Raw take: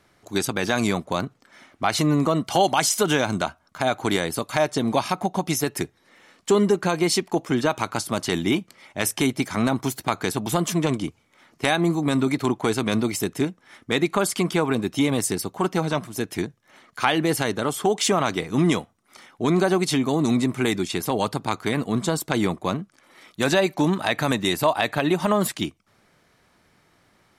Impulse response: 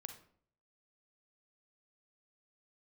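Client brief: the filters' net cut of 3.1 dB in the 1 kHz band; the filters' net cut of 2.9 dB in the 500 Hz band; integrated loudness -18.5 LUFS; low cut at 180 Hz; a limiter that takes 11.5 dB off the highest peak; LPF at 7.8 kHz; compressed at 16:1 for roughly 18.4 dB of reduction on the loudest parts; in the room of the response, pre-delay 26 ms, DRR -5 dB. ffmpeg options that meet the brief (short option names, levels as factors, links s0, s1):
-filter_complex "[0:a]highpass=180,lowpass=7800,equalizer=f=500:t=o:g=-3,equalizer=f=1000:t=o:g=-3,acompressor=threshold=0.0158:ratio=16,alimiter=level_in=2:limit=0.0631:level=0:latency=1,volume=0.501,asplit=2[s0][s1];[1:a]atrim=start_sample=2205,adelay=26[s2];[s1][s2]afir=irnorm=-1:irlink=0,volume=2.99[s3];[s0][s3]amix=inputs=2:normalize=0,volume=7.94"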